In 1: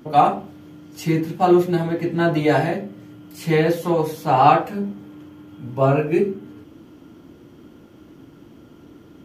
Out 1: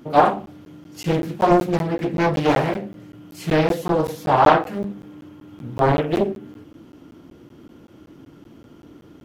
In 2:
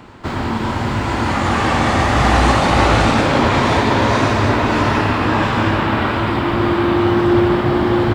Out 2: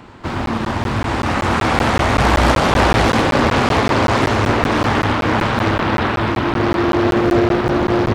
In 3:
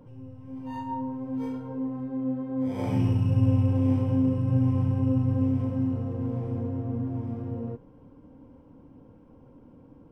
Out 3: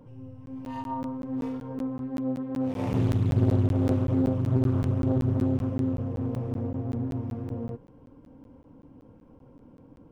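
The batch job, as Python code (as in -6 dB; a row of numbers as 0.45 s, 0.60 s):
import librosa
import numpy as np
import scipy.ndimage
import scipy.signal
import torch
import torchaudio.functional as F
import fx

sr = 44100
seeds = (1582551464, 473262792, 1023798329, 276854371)

y = fx.buffer_crackle(x, sr, first_s=0.46, period_s=0.19, block=512, kind='zero')
y = fx.doppler_dist(y, sr, depth_ms=0.93)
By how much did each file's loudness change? -0.5 LU, -0.5 LU, -0.5 LU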